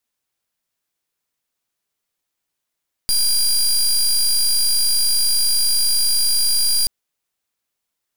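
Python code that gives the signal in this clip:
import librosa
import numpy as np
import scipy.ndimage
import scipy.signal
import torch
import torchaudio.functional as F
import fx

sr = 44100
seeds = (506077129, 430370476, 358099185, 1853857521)

y = fx.pulse(sr, length_s=3.78, hz=4810.0, level_db=-16.5, duty_pct=22)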